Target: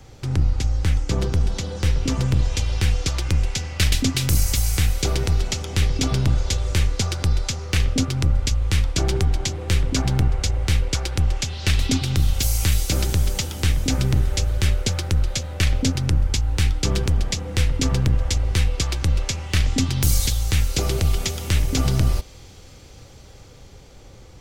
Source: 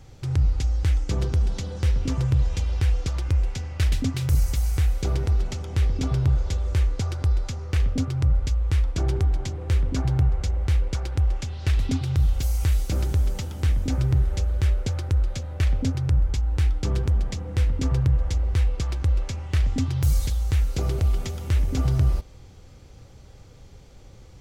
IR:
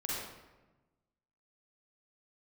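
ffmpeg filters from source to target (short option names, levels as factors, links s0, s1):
-filter_complex "[0:a]acrossover=split=240|840|2200[s0][s1][s2][s3];[s0]aeval=exprs='(tanh(8.91*val(0)+0.7)-tanh(0.7))/8.91':c=same[s4];[s3]dynaudnorm=f=540:g=9:m=2.51[s5];[s4][s1][s2][s5]amix=inputs=4:normalize=0,volume=1.88"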